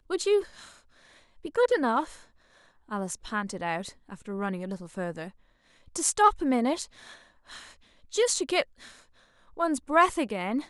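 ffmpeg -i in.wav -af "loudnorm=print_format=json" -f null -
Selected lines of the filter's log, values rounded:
"input_i" : "-27.5",
"input_tp" : "-8.7",
"input_lra" : "7.6",
"input_thresh" : "-39.3",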